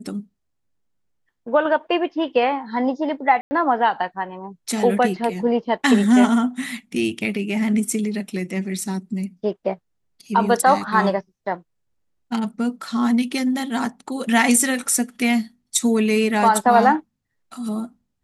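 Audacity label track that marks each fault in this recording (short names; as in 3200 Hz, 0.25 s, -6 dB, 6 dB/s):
3.410000	3.510000	gap 0.1 s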